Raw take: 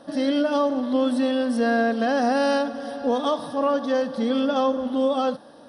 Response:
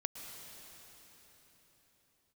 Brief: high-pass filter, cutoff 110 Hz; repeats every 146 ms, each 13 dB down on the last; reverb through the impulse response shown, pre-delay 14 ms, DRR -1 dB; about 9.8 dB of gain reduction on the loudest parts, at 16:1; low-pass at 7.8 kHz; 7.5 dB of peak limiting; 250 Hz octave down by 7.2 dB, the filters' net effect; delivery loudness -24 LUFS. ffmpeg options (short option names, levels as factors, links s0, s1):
-filter_complex "[0:a]highpass=110,lowpass=7800,equalizer=f=250:t=o:g=-7.5,acompressor=threshold=0.0355:ratio=16,alimiter=level_in=1.78:limit=0.0631:level=0:latency=1,volume=0.562,aecho=1:1:146|292|438:0.224|0.0493|0.0108,asplit=2[s0][s1];[1:a]atrim=start_sample=2205,adelay=14[s2];[s1][s2]afir=irnorm=-1:irlink=0,volume=1.12[s3];[s0][s3]amix=inputs=2:normalize=0,volume=2.82"